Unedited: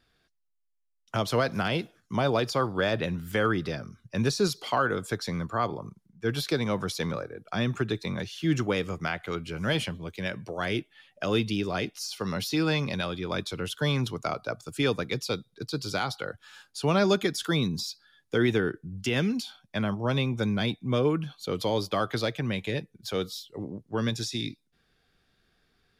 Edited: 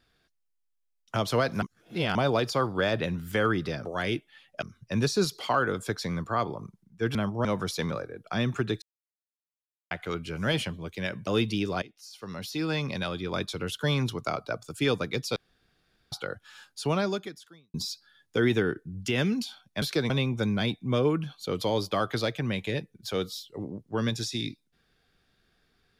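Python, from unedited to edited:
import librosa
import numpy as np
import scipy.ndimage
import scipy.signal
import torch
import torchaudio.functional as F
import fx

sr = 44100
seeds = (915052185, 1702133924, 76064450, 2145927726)

y = fx.edit(x, sr, fx.reverse_span(start_s=1.62, length_s=0.53),
    fx.swap(start_s=6.38, length_s=0.28, other_s=19.8, other_length_s=0.3),
    fx.silence(start_s=8.03, length_s=1.09),
    fx.move(start_s=10.48, length_s=0.77, to_s=3.85),
    fx.fade_in_from(start_s=11.8, length_s=1.38, floor_db=-20.5),
    fx.room_tone_fill(start_s=15.34, length_s=0.76),
    fx.fade_out_span(start_s=16.79, length_s=0.93, curve='qua'), tone=tone)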